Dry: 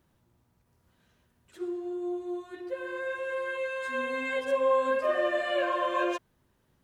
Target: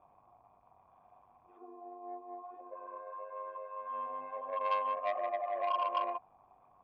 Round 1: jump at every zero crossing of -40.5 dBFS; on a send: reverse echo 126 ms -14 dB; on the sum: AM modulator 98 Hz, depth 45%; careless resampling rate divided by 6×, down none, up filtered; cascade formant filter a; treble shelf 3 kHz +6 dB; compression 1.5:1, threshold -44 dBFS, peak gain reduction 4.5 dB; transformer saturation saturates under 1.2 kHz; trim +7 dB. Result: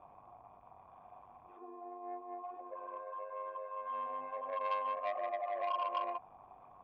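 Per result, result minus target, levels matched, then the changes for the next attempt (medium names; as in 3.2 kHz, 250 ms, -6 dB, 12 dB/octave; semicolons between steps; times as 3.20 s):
jump at every zero crossing: distortion +7 dB; compression: peak gain reduction +4.5 dB
change: jump at every zero crossing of -47.5 dBFS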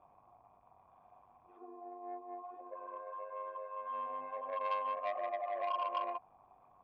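compression: peak gain reduction +4 dB
remove: compression 1.5:1, threshold -44 dBFS, peak gain reduction 4 dB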